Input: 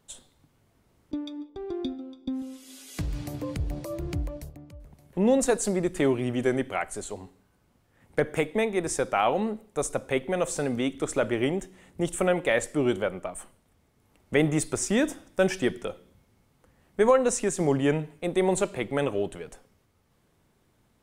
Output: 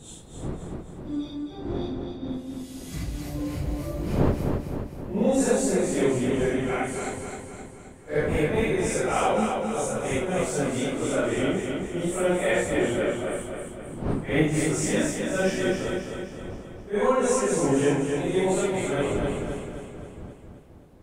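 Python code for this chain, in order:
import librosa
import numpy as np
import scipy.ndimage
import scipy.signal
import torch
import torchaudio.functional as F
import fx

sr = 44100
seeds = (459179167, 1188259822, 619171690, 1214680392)

y = fx.phase_scramble(x, sr, seeds[0], window_ms=200)
y = fx.dmg_wind(y, sr, seeds[1], corner_hz=300.0, level_db=-37.0)
y = fx.echo_feedback(y, sr, ms=262, feedback_pct=52, wet_db=-5.0)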